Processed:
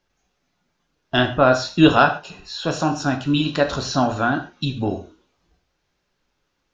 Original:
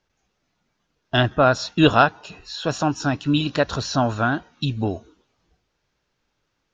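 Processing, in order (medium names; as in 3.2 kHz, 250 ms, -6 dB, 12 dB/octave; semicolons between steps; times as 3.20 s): gated-style reverb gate 160 ms falling, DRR 5 dB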